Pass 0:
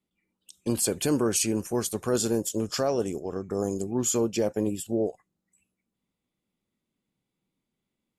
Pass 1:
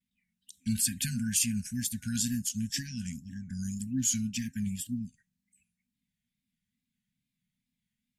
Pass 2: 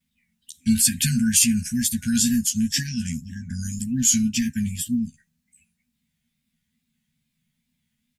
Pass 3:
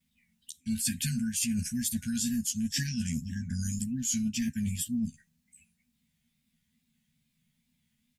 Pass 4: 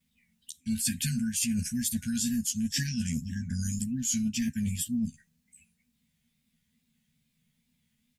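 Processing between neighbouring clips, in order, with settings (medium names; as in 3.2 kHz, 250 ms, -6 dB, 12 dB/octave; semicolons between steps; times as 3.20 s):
FFT band-reject 260–1500 Hz; wow and flutter 110 cents; trim -1 dB
doubling 13 ms -4 dB; trim +8.5 dB
peaking EQ 1.5 kHz -2 dB; reverse; compression 8:1, threshold -28 dBFS, peak gain reduction 15 dB; reverse
peaking EQ 470 Hz +7 dB 0.23 oct; trim +1 dB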